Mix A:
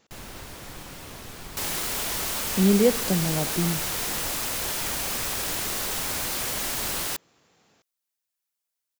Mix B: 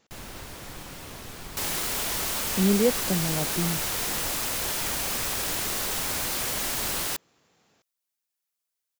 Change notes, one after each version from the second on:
reverb: off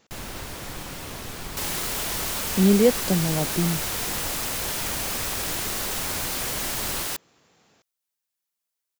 speech +4.5 dB; first sound +5.0 dB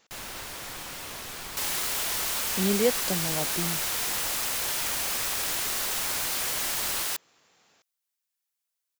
master: add low shelf 460 Hz -11.5 dB

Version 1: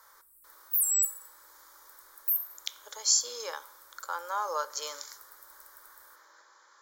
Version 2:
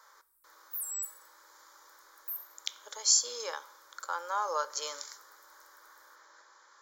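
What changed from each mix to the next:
background -11.0 dB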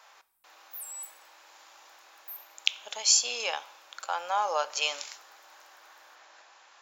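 background -4.5 dB; master: remove fixed phaser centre 720 Hz, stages 6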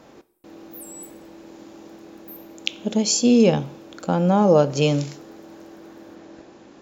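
speech: remove HPF 900 Hz 24 dB/oct

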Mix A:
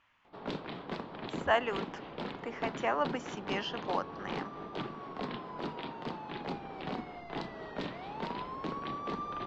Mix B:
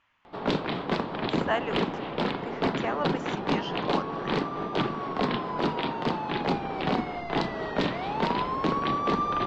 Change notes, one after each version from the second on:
background +11.5 dB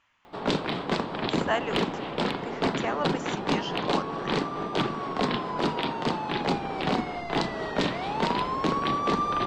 master: remove air absorption 110 m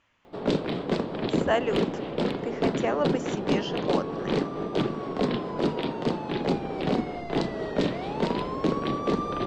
background -4.5 dB; master: add resonant low shelf 690 Hz +6 dB, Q 1.5

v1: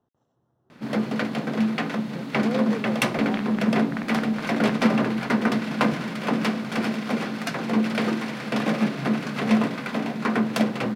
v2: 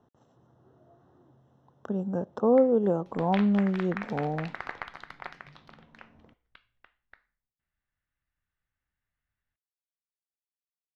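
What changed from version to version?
speech +9.0 dB; first sound: muted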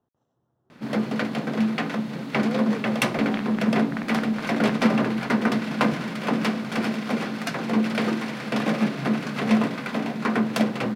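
speech -11.5 dB; first sound: unmuted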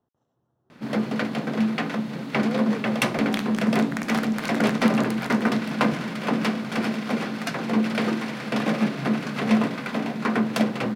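second sound: remove air absorption 340 m

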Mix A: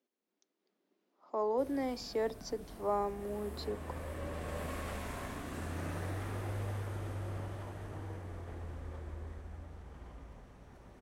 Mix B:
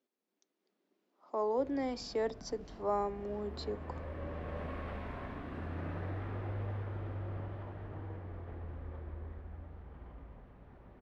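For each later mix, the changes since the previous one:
background: add air absorption 370 m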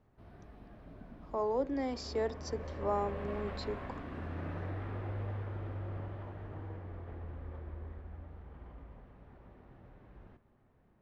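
background: entry -1.40 s

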